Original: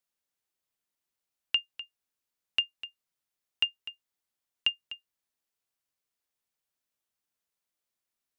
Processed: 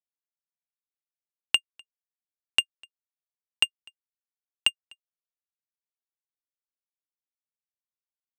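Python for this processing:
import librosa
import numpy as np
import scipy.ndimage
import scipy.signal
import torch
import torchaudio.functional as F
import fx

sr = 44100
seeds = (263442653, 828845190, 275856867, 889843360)

y = fx.peak_eq(x, sr, hz=860.0, db=3.5, octaves=0.77)
y = fx.power_curve(y, sr, exponent=2.0)
y = F.gain(torch.from_numpy(y), 8.5).numpy()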